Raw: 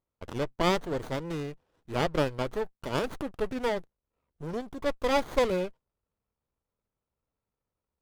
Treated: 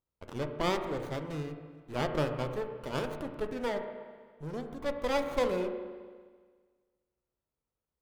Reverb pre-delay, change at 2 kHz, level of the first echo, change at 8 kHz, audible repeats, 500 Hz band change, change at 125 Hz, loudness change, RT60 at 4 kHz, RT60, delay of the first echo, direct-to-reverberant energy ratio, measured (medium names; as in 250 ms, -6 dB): 7 ms, -4.0 dB, no echo, -5.0 dB, no echo, -3.0 dB, -2.0 dB, -3.5 dB, 1.6 s, 1.6 s, no echo, 5.5 dB